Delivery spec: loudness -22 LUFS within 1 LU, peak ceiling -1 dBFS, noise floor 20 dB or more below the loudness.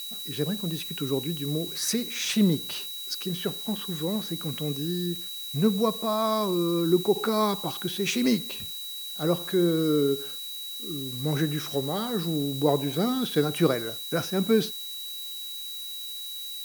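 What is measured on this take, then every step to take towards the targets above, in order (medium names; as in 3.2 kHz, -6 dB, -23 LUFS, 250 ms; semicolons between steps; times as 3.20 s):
steady tone 3.9 kHz; tone level -36 dBFS; noise floor -37 dBFS; noise floor target -48 dBFS; loudness -27.5 LUFS; peak level -9.0 dBFS; loudness target -22.0 LUFS
-> band-stop 3.9 kHz, Q 30; noise reduction 11 dB, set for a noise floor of -37 dBFS; trim +5.5 dB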